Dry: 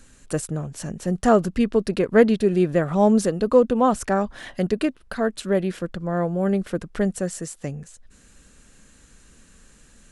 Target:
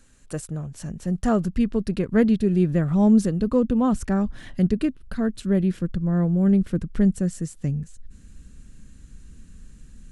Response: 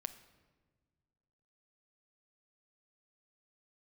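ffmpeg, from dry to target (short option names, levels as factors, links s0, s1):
-af "asubboost=boost=6.5:cutoff=240,volume=0.501"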